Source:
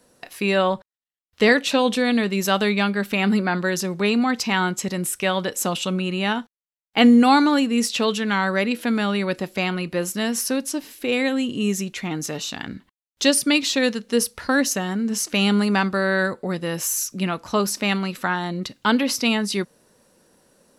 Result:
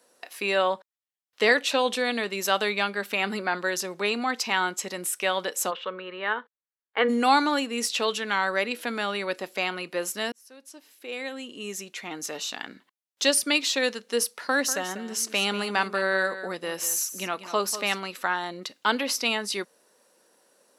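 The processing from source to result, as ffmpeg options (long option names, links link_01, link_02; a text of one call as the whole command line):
ffmpeg -i in.wav -filter_complex "[0:a]asplit=3[link_01][link_02][link_03];[link_01]afade=type=out:start_time=5.7:duration=0.02[link_04];[link_02]highpass=290,equalizer=frequency=310:width_type=q:width=4:gain=-10,equalizer=frequency=470:width_type=q:width=4:gain=7,equalizer=frequency=740:width_type=q:width=4:gain=-9,equalizer=frequency=1100:width_type=q:width=4:gain=4,equalizer=frequency=1700:width_type=q:width=4:gain=5,equalizer=frequency=2600:width_type=q:width=4:gain=-9,lowpass=frequency=2900:width=0.5412,lowpass=frequency=2900:width=1.3066,afade=type=in:start_time=5.7:duration=0.02,afade=type=out:start_time=7.08:duration=0.02[link_05];[link_03]afade=type=in:start_time=7.08:duration=0.02[link_06];[link_04][link_05][link_06]amix=inputs=3:normalize=0,asettb=1/sr,asplit=3[link_07][link_08][link_09];[link_07]atrim=end=14.364[link_10];[link_08]atrim=start=14.36:end=18,asetpts=PTS-STARTPTS,afade=type=in:duration=0.004:curve=qsin,afade=type=out:start_time=3.636:duration=0.004:curve=qsin,aecho=1:1:193:0.237,atrim=end_sample=160524[link_11];[link_09]atrim=start=17.996[link_12];[link_10][link_11]acrossfade=duration=0.004:curve1=hsin:curve2=qsin[link_13];[link_13][link_12]acrossfade=duration=0.004:curve1=qsin:curve2=hsin,asplit=2[link_14][link_15];[link_14]atrim=end=10.32,asetpts=PTS-STARTPTS,afade=type=out:start_time=10.316:duration=0.004:curve=hsin[link_16];[link_15]atrim=start=10.32,asetpts=PTS-STARTPTS,afade=type=in:duration=2.15[link_17];[link_16][link_17]concat=n=2:v=0:a=1,highpass=420,volume=-2.5dB" out.wav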